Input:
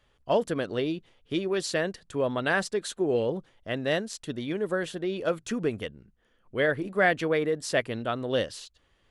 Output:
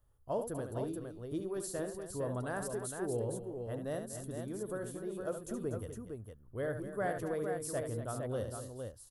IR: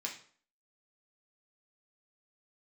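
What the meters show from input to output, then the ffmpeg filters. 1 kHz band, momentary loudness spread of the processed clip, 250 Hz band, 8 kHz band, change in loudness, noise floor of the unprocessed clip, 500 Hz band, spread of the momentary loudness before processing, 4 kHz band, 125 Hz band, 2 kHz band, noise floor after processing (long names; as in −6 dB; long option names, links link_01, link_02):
−10.0 dB, 6 LU, −9.0 dB, −4.0 dB, −10.5 dB, −68 dBFS, −9.5 dB, 9 LU, −20.5 dB, −4.0 dB, −17.5 dB, −59 dBFS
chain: -af "firequalizer=gain_entry='entry(110,0);entry(160,-11);entry(1200,-12);entry(2300,-28);entry(11000,5)':delay=0.05:min_phase=1,aecho=1:1:72|242|460:0.398|0.266|0.501"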